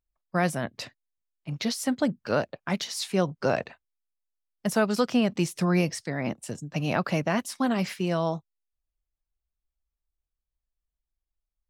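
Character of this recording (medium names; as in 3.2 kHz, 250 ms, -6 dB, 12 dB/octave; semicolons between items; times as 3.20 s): noise floor -87 dBFS; spectral tilt -5.5 dB/octave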